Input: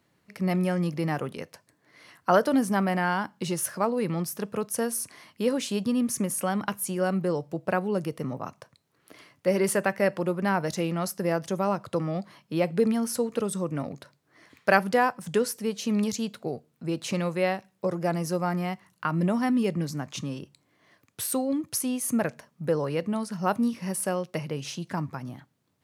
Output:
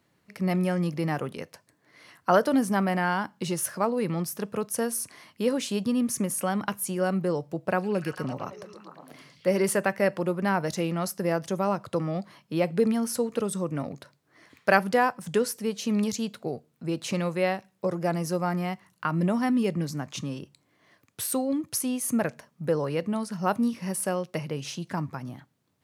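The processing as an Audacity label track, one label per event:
7.590000	9.620000	delay with a stepping band-pass 0.112 s, band-pass from 5700 Hz, each repeat -0.7 oct, level -1 dB

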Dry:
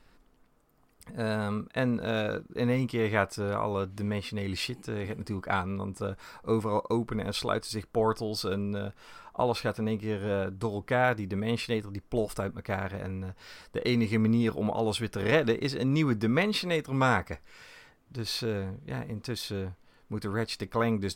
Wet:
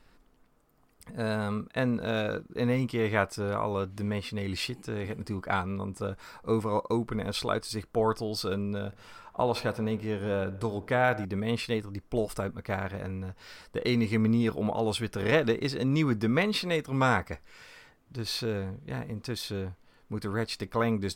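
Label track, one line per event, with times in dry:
8.860000	11.250000	dark delay 62 ms, feedback 72%, low-pass 2300 Hz, level -19 dB

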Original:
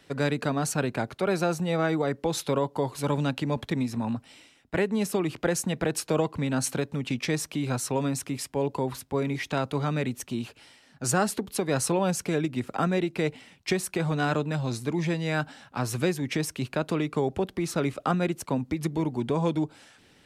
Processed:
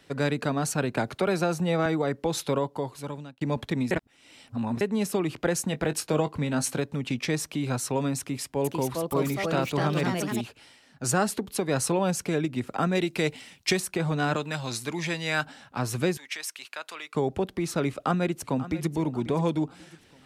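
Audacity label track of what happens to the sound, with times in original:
0.970000	1.860000	three-band squash depth 70%
2.520000	3.410000	fade out
3.910000	4.810000	reverse
5.670000	6.800000	doubler 20 ms -12 dB
8.180000	10.410000	echoes that change speed 0.464 s, each echo +3 st, echoes 2
12.950000	13.800000	high shelf 2700 Hz +9.5 dB
14.360000	15.450000	tilt shelf lows -6.5 dB, about 790 Hz
16.170000	17.150000	HPF 1300 Hz
17.890000	18.900000	echo throw 0.54 s, feedback 40%, level -15 dB

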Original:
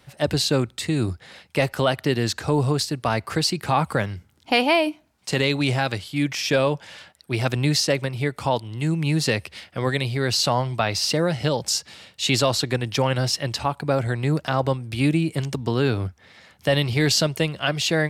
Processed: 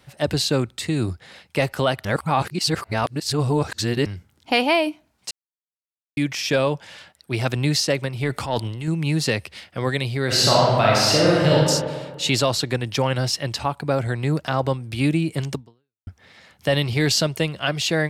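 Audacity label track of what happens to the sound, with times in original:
2.050000	4.060000	reverse
5.310000	6.170000	mute
8.230000	8.880000	transient shaper attack -10 dB, sustain +9 dB
10.250000	11.560000	reverb throw, RT60 1.6 s, DRR -5 dB
15.550000	16.070000	fade out exponential

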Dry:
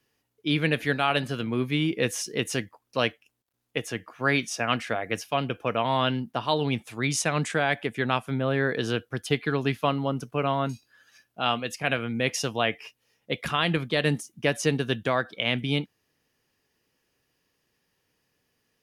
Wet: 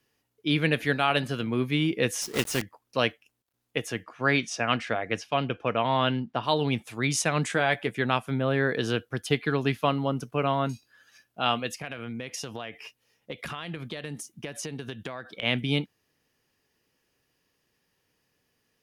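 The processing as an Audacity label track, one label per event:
2.220000	2.620000	block floating point 3-bit
4.030000	6.420000	LPF 8600 Hz -> 3900 Hz
7.430000	7.940000	doubler 16 ms -11 dB
11.670000	15.430000	compressor 16:1, threshold -31 dBFS

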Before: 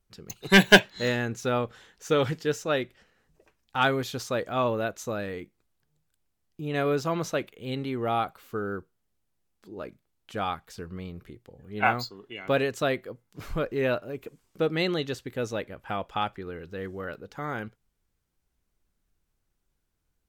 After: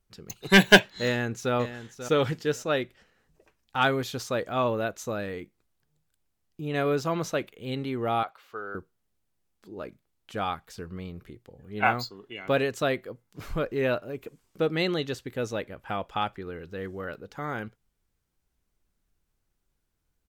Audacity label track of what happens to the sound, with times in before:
1.050000	1.540000	echo throw 0.54 s, feedback 15%, level -11.5 dB
8.230000	8.750000	three-band isolator lows -18 dB, under 500 Hz, highs -13 dB, over 5400 Hz

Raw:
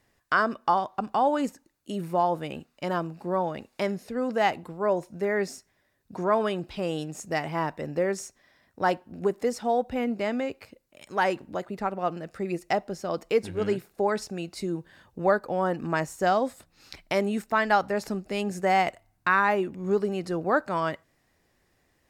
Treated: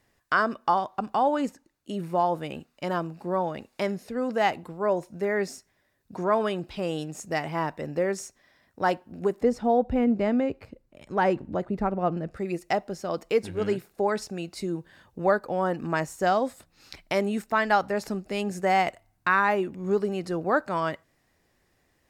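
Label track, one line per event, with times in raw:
1.230000	2.130000	high shelf 7900 Hz -6.5 dB
9.410000	12.370000	tilt -3 dB/oct

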